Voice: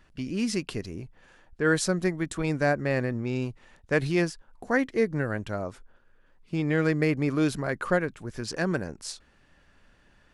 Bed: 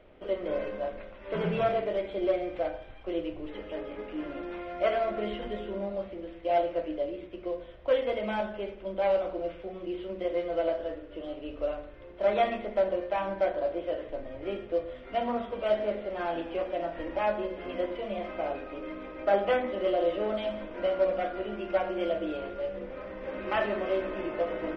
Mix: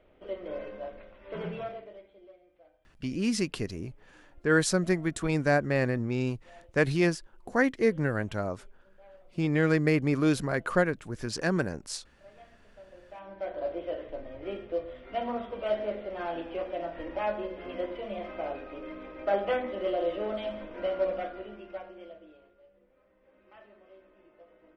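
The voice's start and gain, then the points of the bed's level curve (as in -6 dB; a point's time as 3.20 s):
2.85 s, 0.0 dB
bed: 1.46 s -6 dB
2.38 s -29 dB
12.70 s -29 dB
13.67 s -2.5 dB
21.13 s -2.5 dB
22.63 s -26.5 dB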